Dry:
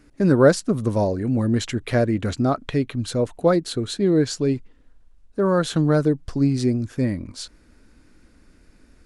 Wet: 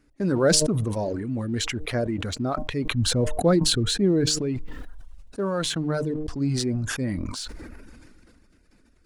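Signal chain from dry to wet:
hum removal 152.9 Hz, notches 7
reverb reduction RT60 0.66 s
0:02.91–0:04.26: low-shelf EQ 260 Hz +11 dB
in parallel at −8.5 dB: dead-zone distortion −38.5 dBFS
on the sum: level that may fall only so fast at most 23 dB per second
level −9 dB

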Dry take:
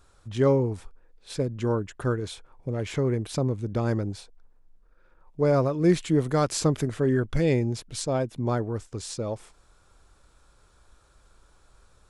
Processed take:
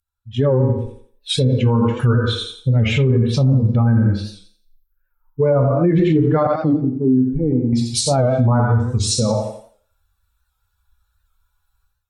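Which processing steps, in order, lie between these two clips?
spectral dynamics exaggerated over time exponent 2
reverb whose tail is shaped and stops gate 210 ms falling, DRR 2 dB
automatic gain control gain up to 16 dB
0:06.47–0:07.73: formant resonators in series u
on a send: feedback echo with a high-pass in the loop 86 ms, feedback 31%, high-pass 200 Hz, level −8 dB
on the sum: treble cut that deepens with the level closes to 1,400 Hz, closed at −9.5 dBFS
in parallel at +1.5 dB: downward compressor, threshold −27 dBFS, peak gain reduction 19 dB
on the sum: brickwall limiter −11.5 dBFS, peak gain reduction 11 dB
wow of a warped record 78 rpm, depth 100 cents
level +3.5 dB

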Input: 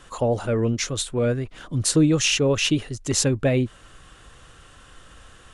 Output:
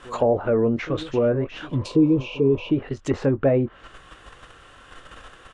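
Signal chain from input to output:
on a send: backwards echo 1,088 ms −20 dB
on the sum: healed spectral selection 0:01.79–0:02.68, 480–2,200 Hz before
bass and treble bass −8 dB, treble −10 dB
in parallel at +3 dB: output level in coarse steps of 17 dB
on the sum: double-tracking delay 22 ms −12 dB
treble cut that deepens with the level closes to 1,100 Hz, closed at −19 dBFS
level +1.5 dB

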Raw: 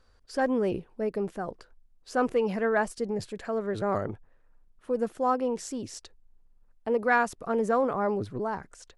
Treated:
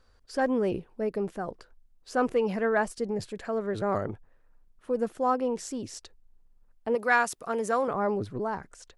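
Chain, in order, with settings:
0:06.95–0:07.88: spectral tilt +2.5 dB per octave

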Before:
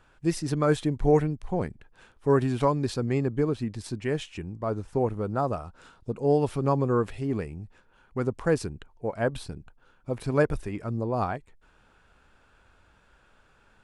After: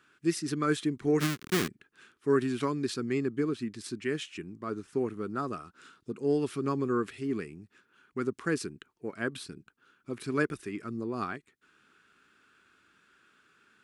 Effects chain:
0:01.20–0:01.68: each half-wave held at its own peak
high-pass filter 240 Hz 12 dB per octave
flat-topped bell 690 Hz −14 dB 1.2 octaves

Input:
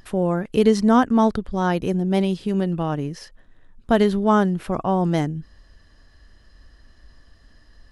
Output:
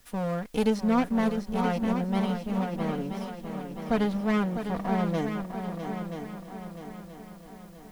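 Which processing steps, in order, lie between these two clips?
lower of the sound and its delayed copy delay 4.2 ms
high-shelf EQ 5,000 Hz +6.5 dB, from 0:00.70 −5 dB
background noise white −55 dBFS
echo machine with several playback heads 326 ms, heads second and third, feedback 51%, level −8.5 dB
level −8.5 dB

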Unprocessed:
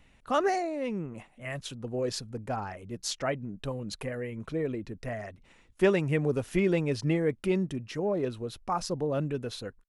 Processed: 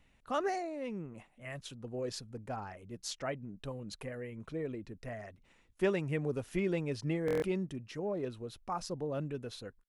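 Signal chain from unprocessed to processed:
buffer that repeats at 0:07.26, samples 1,024, times 6
level −7 dB

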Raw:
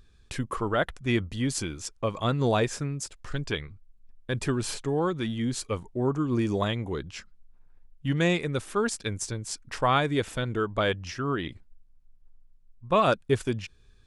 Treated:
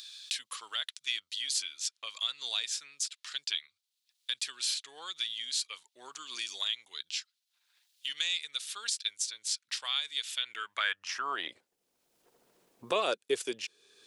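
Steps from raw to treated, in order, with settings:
high-pass filter sweep 3,800 Hz → 420 Hz, 0:10.26–0:11.74
multiband upward and downward compressor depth 70%

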